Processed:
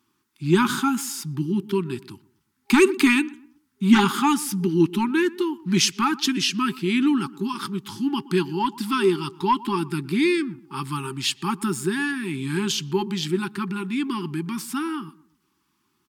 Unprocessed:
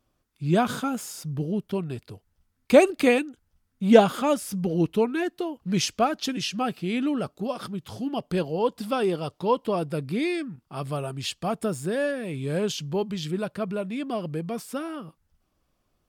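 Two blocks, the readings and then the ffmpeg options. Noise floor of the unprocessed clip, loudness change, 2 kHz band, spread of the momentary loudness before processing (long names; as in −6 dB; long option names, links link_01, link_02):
−74 dBFS, +3.0 dB, +6.5 dB, 13 LU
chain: -filter_complex "[0:a]highpass=200,asplit=2[link_01][link_02];[link_02]adelay=121,lowpass=frequency=1300:poles=1,volume=-19.5dB,asplit=2[link_03][link_04];[link_04]adelay=121,lowpass=frequency=1300:poles=1,volume=0.37,asplit=2[link_05][link_06];[link_06]adelay=121,lowpass=frequency=1300:poles=1,volume=0.37[link_07];[link_03][link_05][link_07]amix=inputs=3:normalize=0[link_08];[link_01][link_08]amix=inputs=2:normalize=0,acontrast=84,afftfilt=real='re*(1-between(b*sr/4096,400,810))':imag='im*(1-between(b*sr/4096,400,810))':win_size=4096:overlap=0.75"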